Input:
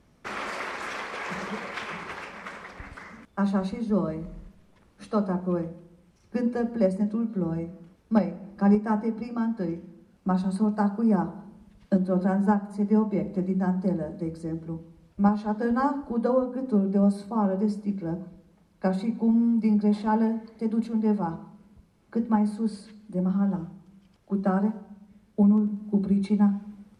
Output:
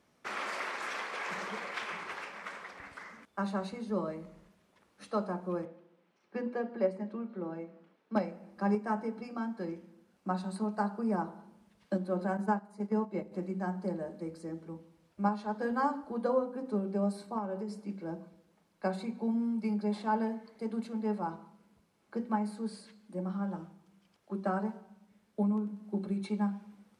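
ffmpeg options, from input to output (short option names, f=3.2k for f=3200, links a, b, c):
-filter_complex "[0:a]asettb=1/sr,asplit=3[a][b][c];[a]atrim=end=5.654[d];[b]atrim=start=5.65:end=8.16,asetpts=PTS-STARTPTS,afade=t=in:d=0.004:c=qsin,afade=t=out:st=2.506:d=0.004:c=qsin,acrossover=split=170 4100:gain=0.0708 1 0.141[e][f][g];[e][f][g]amix=inputs=3:normalize=0[h];[c]atrim=start=8.156[i];[d][h]acrossfade=d=0.004:c1=hsin:c2=qsin[j];[j][i]acrossfade=d=0.004:c1=qsin:c2=hsin,asettb=1/sr,asplit=3[k][l][m];[k]atrim=end=12.374[n];[l]atrim=start=12.37:end=13.32,asetpts=PTS-STARTPTS,afade=t=in:d=0.004:c=qsin,afade=t=out:st=0.946:d=0.004:c=qsin,agate=range=-7dB:threshold=-27dB:ratio=16:release=100:detection=peak[o];[m]atrim=start=13.316[p];[n][o]acrossfade=d=0.004:c1=hsin:c2=qsin[q];[q][p]acrossfade=d=0.004:c1=qsin:c2=hsin,asettb=1/sr,asplit=3[r][s][t];[r]atrim=end=17.384[u];[s]atrim=start=17.38:end=17.89,asetpts=PTS-STARTPTS,afade=t=in:d=0.004:c=qsin,afade=t=out:st=0.506:d=0.004:c=qsin,acompressor=threshold=-25dB:ratio=6:attack=3.2:release=140:knee=1:detection=peak[v];[t]atrim=start=17.886[w];[u][v]acrossfade=d=0.004:c1=hsin:c2=qsin[x];[x][w]acrossfade=d=0.004:c1=qsin:c2=hsin,highpass=f=450:p=1,volume=-3dB"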